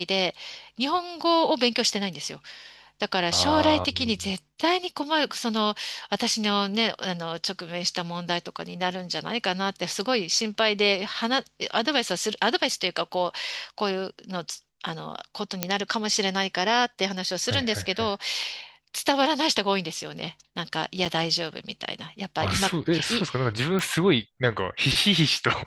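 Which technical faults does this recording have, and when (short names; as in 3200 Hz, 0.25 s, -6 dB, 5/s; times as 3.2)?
15.63 pop -5 dBFS
21.05–21.06 gap 5.9 ms
23.79 pop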